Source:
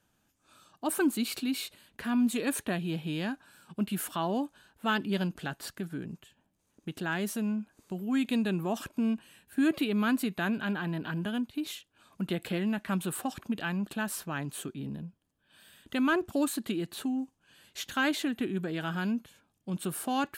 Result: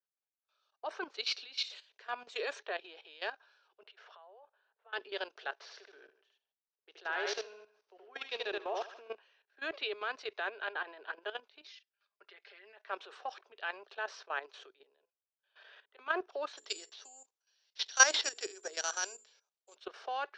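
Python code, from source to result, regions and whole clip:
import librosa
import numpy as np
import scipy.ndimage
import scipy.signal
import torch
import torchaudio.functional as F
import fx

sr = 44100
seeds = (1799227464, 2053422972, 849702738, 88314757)

y = fx.chain(x, sr, fx.peak_eq(hz=7500.0, db=14.5, octaves=0.29),
    fx.sustainer(db_per_s=80.0), at=(1.64, 2.59))
y = fx.chain(y, sr, fx.over_compress(threshold_db=-38.0, ratio=-1.0),
    fx.steep_highpass(hz=400.0, slope=36),
    fx.spacing_loss(db_at_10k=24), at=(3.83, 4.93))
y = fx.chain(y, sr, fx.echo_feedback(ms=76, feedback_pct=38, wet_db=-4),
    fx.resample_bad(factor=3, down='none', up='hold'), at=(5.56, 9.15))
y = fx.chain(y, sr, fx.cheby_ripple(hz=6800.0, ripple_db=9),
    fx.comb(ms=5.0, depth=0.72), at=(11.67, 12.77))
y = fx.chain(y, sr, fx.high_shelf(hz=4900.0, db=-2.5),
    fx.auto_swell(attack_ms=422.0),
    fx.band_squash(depth_pct=70), at=(14.78, 15.99))
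y = fx.chain(y, sr, fx.high_shelf(hz=5300.0, db=-10.5),
    fx.hum_notches(base_hz=60, count=8),
    fx.resample_bad(factor=6, down='none', up='zero_stuff'), at=(16.53, 19.75))
y = scipy.signal.sosfilt(scipy.signal.cheby1(5, 1.0, [410.0, 5800.0], 'bandpass', fs=sr, output='sos'), y)
y = fx.level_steps(y, sr, step_db=13)
y = fx.band_widen(y, sr, depth_pct=70)
y = y * 10.0 ** (2.5 / 20.0)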